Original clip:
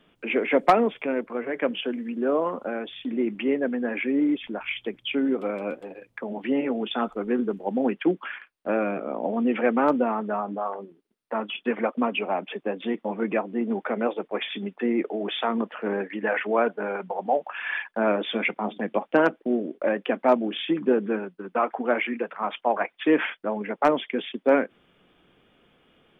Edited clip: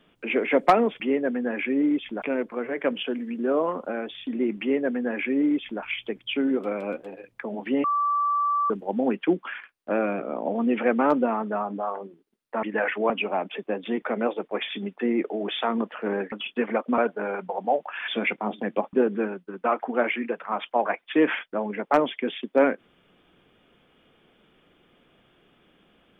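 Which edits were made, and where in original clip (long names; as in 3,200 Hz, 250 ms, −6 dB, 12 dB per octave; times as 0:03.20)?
0:03.38–0:04.60: duplicate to 0:01.00
0:06.62–0:07.48: beep over 1,160 Hz −20.5 dBFS
0:11.41–0:12.07: swap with 0:16.12–0:16.59
0:12.99–0:13.82: remove
0:17.69–0:18.26: remove
0:19.11–0:20.84: remove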